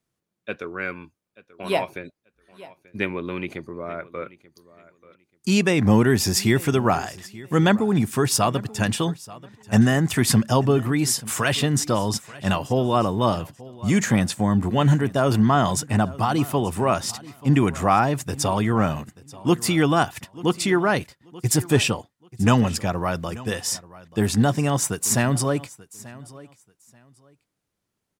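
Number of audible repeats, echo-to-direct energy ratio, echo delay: 2, -20.0 dB, 885 ms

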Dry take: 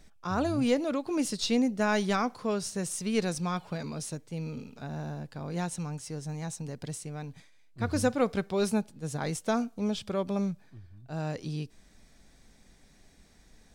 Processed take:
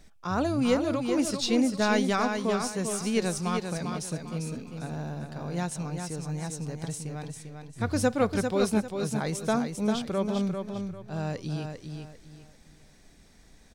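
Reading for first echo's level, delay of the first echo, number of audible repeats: -6.0 dB, 397 ms, 3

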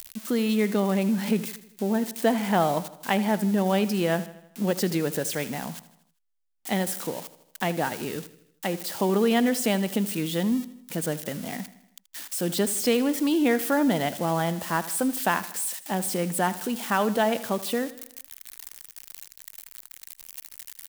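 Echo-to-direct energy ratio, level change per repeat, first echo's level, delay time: -15.0 dB, -5.5 dB, -16.5 dB, 79 ms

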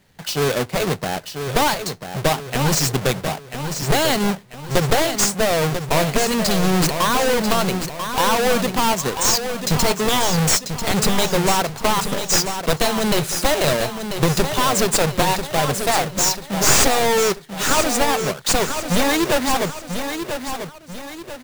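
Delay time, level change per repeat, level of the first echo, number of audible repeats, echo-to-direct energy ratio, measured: 991 ms, -7.5 dB, -8.0 dB, 3, -7.0 dB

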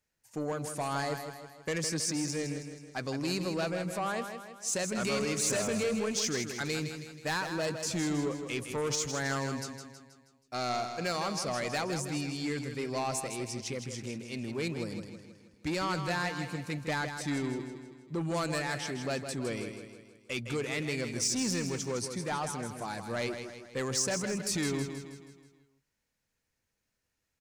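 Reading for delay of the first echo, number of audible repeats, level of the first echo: 160 ms, 5, -8.0 dB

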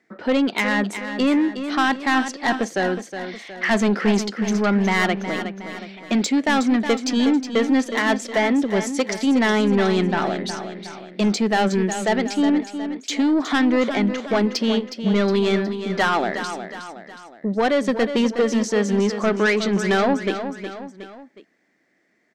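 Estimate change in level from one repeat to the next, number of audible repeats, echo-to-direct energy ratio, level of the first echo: -6.5 dB, 3, -8.5 dB, -9.5 dB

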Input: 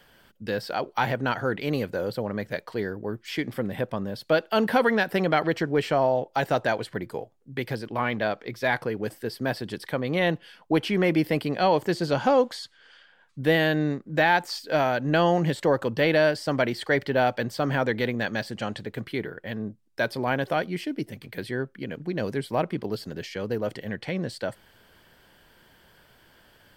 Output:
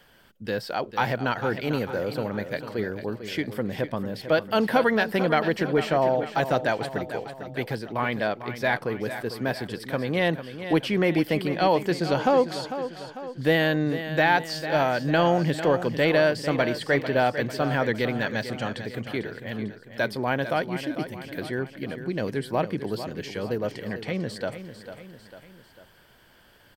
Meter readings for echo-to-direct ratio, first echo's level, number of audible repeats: -9.5 dB, -11.0 dB, 3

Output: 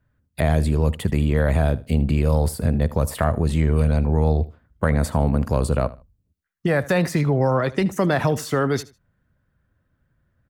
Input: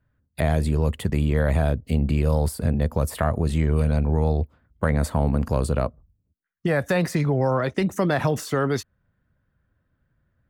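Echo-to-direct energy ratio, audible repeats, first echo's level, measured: -19.0 dB, 2, -19.0 dB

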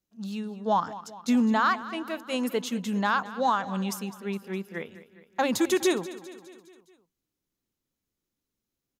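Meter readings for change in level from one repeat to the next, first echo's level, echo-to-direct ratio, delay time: -5.0 dB, -16.0 dB, -14.5 dB, 206 ms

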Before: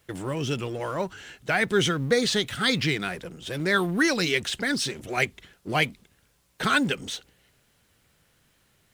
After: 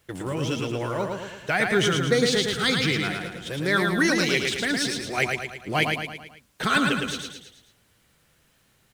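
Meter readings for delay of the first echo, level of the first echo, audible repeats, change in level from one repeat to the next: 110 ms, -4.0 dB, 5, -6.0 dB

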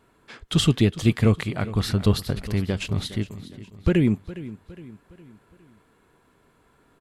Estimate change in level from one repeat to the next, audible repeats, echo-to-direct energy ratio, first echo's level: -6.5 dB, 3, -15.0 dB, -16.0 dB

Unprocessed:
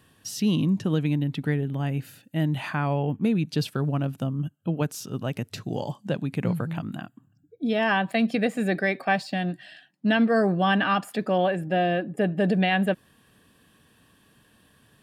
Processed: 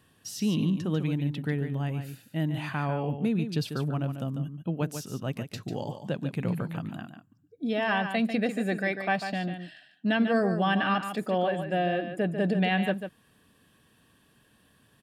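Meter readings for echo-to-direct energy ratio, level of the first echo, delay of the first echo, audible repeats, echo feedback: -8.5 dB, -8.5 dB, 145 ms, 1, no regular repeats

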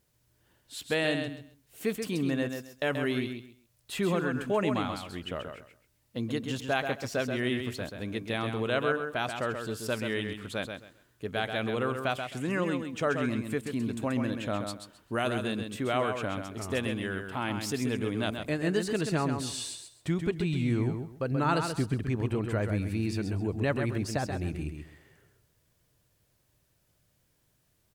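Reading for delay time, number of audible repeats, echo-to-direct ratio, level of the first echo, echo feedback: 132 ms, 3, -6.5 dB, -6.5 dB, 22%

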